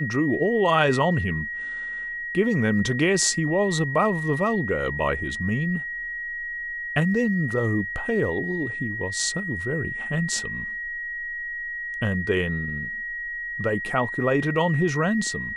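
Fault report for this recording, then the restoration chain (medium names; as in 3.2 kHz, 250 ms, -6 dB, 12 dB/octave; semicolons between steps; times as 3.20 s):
whine 1.9 kHz -29 dBFS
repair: band-stop 1.9 kHz, Q 30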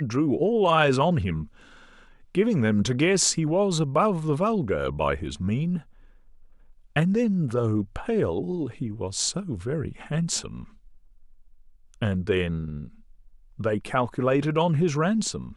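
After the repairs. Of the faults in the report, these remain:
nothing left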